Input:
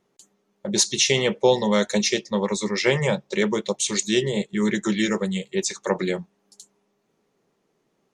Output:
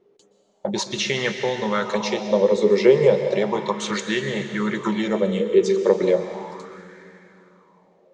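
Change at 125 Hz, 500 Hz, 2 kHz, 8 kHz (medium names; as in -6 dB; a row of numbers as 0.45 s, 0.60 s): -1.5 dB, +5.0 dB, -0.5 dB, -10.5 dB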